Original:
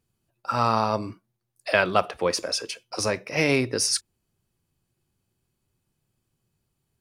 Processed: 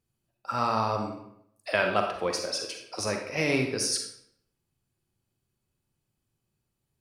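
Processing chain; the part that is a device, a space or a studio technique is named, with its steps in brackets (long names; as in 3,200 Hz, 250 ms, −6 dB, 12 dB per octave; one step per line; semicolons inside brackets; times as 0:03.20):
bathroom (convolution reverb RT60 0.70 s, pre-delay 37 ms, DRR 3.5 dB)
level −5.5 dB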